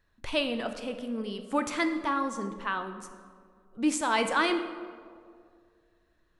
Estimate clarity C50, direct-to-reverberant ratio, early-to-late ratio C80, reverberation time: 9.0 dB, 7.0 dB, 10.5 dB, 2.2 s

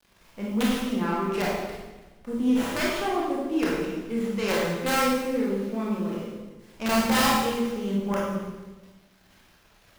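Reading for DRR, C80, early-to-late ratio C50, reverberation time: -5.0 dB, 2.5 dB, -0.5 dB, 1.2 s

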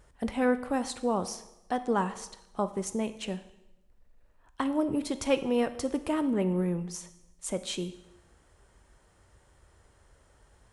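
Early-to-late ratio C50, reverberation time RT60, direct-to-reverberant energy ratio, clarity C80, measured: 13.5 dB, 0.95 s, 11.0 dB, 16.0 dB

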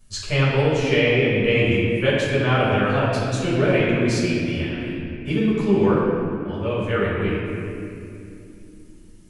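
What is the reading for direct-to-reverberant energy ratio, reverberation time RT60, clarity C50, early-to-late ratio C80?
-9.5 dB, 2.7 s, -1.5 dB, 0.0 dB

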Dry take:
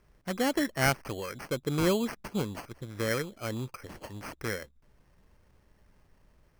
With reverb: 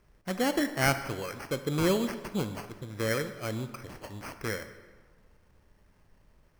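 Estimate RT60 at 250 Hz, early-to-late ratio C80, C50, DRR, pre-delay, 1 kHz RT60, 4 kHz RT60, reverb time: 1.3 s, 12.5 dB, 11.0 dB, 9.0 dB, 13 ms, 1.5 s, 1.0 s, 1.5 s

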